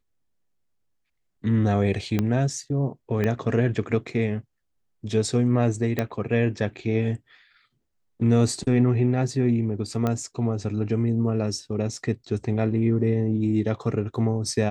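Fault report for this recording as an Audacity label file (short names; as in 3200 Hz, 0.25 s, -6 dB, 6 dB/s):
2.190000	2.190000	pop -11 dBFS
3.240000	3.240000	pop -13 dBFS
5.990000	5.990000	pop -11 dBFS
10.070000	10.070000	pop -13 dBFS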